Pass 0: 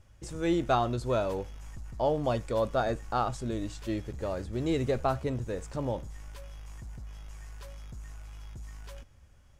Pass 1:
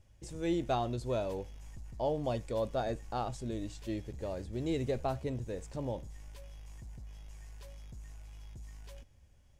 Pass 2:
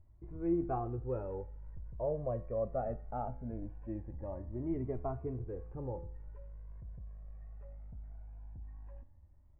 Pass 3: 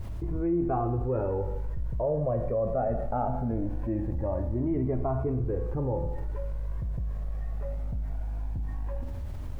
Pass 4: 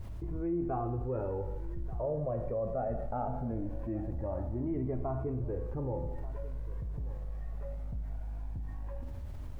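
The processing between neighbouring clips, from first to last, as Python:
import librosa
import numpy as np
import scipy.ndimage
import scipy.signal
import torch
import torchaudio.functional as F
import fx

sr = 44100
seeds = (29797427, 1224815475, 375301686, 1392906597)

y1 = fx.peak_eq(x, sr, hz=1300.0, db=-8.5, octaves=0.64)
y1 = F.gain(torch.from_numpy(y1), -4.5).numpy()
y2 = scipy.ndimage.gaussian_filter1d(y1, 6.4, mode='constant')
y2 = fx.comb_fb(y2, sr, f0_hz=85.0, decay_s=0.52, harmonics='all', damping=0.0, mix_pct=60)
y2 = fx.comb_cascade(y2, sr, direction='rising', hz=0.21)
y2 = F.gain(torch.from_numpy(y2), 8.5).numpy()
y3 = fx.dmg_noise_colour(y2, sr, seeds[0], colour='brown', level_db=-69.0)
y3 = fx.rev_plate(y3, sr, seeds[1], rt60_s=0.77, hf_ratio=0.95, predelay_ms=0, drr_db=8.5)
y3 = fx.env_flatten(y3, sr, amount_pct=70)
y3 = F.gain(torch.from_numpy(y3), 2.5).numpy()
y4 = y3 + 10.0 ** (-17.5 / 20.0) * np.pad(y3, (int(1185 * sr / 1000.0), 0))[:len(y3)]
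y4 = F.gain(torch.from_numpy(y4), -6.0).numpy()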